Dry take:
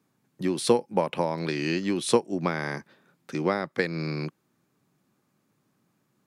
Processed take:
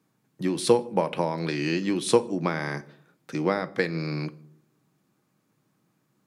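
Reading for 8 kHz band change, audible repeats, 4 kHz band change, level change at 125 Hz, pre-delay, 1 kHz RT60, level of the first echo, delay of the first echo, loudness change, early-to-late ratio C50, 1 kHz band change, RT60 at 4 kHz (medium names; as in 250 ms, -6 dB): +0.5 dB, no echo, +0.5 dB, +1.5 dB, 6 ms, 0.50 s, no echo, no echo, +0.5 dB, 19.5 dB, +0.5 dB, 0.35 s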